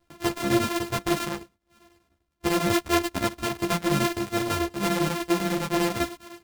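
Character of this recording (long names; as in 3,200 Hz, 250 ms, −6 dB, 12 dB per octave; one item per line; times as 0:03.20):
a buzz of ramps at a fixed pitch in blocks of 128 samples
chopped level 10 Hz, depth 60%, duty 75%
a shimmering, thickened sound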